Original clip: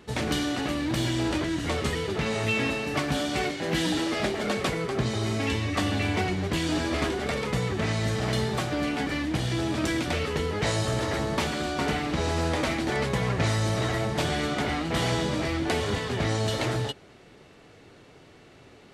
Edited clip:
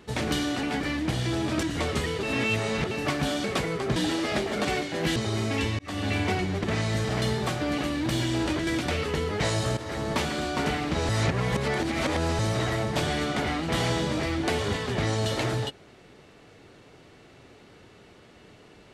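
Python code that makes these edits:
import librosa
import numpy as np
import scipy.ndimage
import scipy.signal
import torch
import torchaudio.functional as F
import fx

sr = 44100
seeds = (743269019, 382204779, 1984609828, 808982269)

y = fx.edit(x, sr, fx.swap(start_s=0.63, length_s=0.89, other_s=8.89, other_length_s=1.0),
    fx.reverse_span(start_s=2.12, length_s=0.68),
    fx.swap(start_s=3.33, length_s=0.51, other_s=4.53, other_length_s=0.52),
    fx.fade_in_span(start_s=5.68, length_s=0.31),
    fx.cut(start_s=6.53, length_s=1.22),
    fx.fade_in_from(start_s=10.99, length_s=0.35, floor_db=-12.0),
    fx.reverse_span(start_s=12.31, length_s=1.3), tone=tone)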